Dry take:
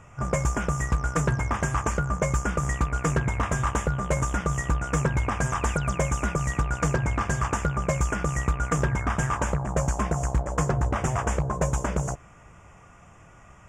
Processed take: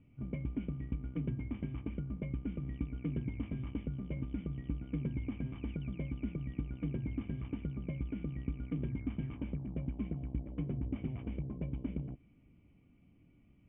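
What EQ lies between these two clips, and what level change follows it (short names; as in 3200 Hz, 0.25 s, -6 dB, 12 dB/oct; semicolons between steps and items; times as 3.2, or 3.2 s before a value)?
vocal tract filter i; air absorption 200 m; -1.0 dB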